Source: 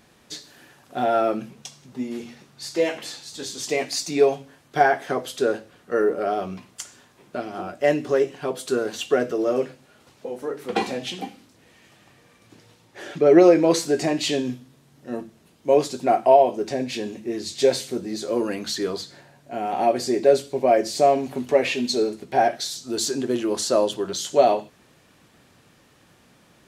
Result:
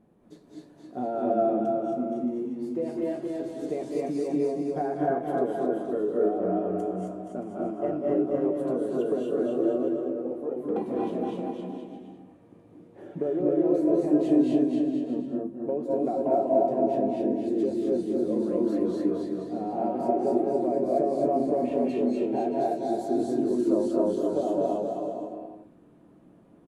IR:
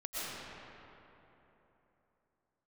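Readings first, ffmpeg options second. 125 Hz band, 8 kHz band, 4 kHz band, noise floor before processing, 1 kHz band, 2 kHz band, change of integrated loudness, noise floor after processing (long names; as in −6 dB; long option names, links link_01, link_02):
−2.5 dB, below −20 dB, below −20 dB, −57 dBFS, −7.5 dB, below −15 dB, −4.5 dB, −55 dBFS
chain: -filter_complex "[0:a]firequalizer=gain_entry='entry(130,0);entry(180,7);entry(1600,-14);entry(5100,-26);entry(11000,-14)':delay=0.05:min_phase=1,acompressor=threshold=-19dB:ratio=6,aecho=1:1:270|472.5|624.4|738.3|823.7:0.631|0.398|0.251|0.158|0.1[link_01];[1:a]atrim=start_sample=2205,afade=type=out:start_time=0.18:duration=0.01,atrim=end_sample=8379,asetrate=22491,aresample=44100[link_02];[link_01][link_02]afir=irnorm=-1:irlink=0,volume=-5dB"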